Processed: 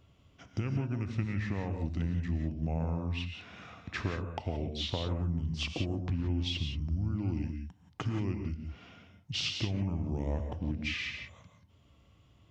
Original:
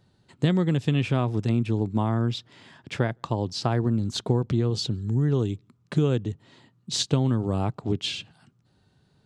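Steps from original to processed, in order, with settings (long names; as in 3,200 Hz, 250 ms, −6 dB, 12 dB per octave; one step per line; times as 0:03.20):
speed change −26%
downward compressor 3 to 1, threshold −34 dBFS, peak gain reduction 13.5 dB
reverb whose tail is shaped and stops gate 200 ms rising, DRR 5 dB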